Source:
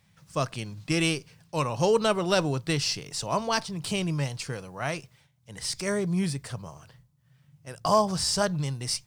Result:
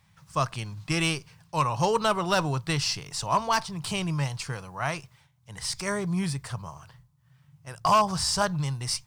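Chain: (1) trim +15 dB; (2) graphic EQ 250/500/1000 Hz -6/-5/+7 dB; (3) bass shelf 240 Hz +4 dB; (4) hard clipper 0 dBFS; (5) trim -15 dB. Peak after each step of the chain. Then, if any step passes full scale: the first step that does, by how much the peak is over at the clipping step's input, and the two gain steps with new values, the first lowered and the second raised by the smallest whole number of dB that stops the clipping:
+4.5 dBFS, +7.5 dBFS, +8.0 dBFS, 0.0 dBFS, -15.0 dBFS; step 1, 8.0 dB; step 1 +7 dB, step 5 -7 dB

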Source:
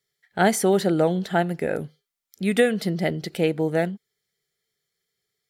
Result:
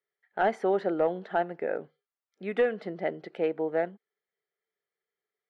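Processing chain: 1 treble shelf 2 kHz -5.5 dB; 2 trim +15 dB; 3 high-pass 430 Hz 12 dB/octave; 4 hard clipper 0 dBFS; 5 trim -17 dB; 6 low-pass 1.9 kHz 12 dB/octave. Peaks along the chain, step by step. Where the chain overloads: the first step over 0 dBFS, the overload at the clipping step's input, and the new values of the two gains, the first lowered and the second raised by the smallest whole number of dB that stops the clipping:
-6.5 dBFS, +8.5 dBFS, +6.0 dBFS, 0.0 dBFS, -17.0 dBFS, -16.5 dBFS; step 2, 6.0 dB; step 2 +9 dB, step 5 -11 dB

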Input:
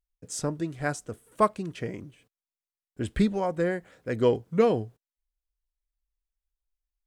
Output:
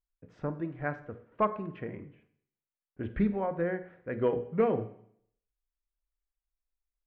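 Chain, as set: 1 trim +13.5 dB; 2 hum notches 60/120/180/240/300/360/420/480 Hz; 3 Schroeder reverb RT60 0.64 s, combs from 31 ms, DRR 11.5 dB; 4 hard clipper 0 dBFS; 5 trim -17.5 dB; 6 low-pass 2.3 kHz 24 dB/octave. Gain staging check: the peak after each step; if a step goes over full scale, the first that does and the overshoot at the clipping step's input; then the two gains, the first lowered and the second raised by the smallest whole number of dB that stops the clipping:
+4.5 dBFS, +4.0 dBFS, +4.0 dBFS, 0.0 dBFS, -17.5 dBFS, -16.5 dBFS; step 1, 4.0 dB; step 1 +9.5 dB, step 5 -13.5 dB

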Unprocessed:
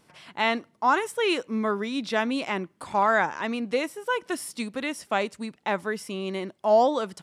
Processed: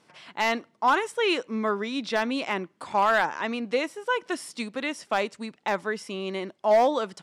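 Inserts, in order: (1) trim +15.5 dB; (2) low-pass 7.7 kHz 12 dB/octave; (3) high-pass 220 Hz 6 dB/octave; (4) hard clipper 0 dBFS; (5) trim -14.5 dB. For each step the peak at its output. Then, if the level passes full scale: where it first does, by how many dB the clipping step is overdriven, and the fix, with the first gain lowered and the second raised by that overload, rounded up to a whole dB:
+5.5 dBFS, +5.5 dBFS, +6.0 dBFS, 0.0 dBFS, -14.5 dBFS; step 1, 6.0 dB; step 1 +9.5 dB, step 5 -8.5 dB

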